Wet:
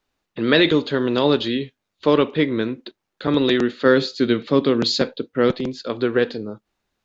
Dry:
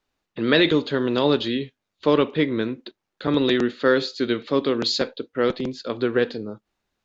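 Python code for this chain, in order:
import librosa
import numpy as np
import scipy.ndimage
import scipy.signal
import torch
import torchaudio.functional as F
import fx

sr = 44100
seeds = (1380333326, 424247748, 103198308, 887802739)

y = fx.peak_eq(x, sr, hz=160.0, db=6.5, octaves=1.6, at=(3.85, 5.51))
y = y * 10.0 ** (2.0 / 20.0)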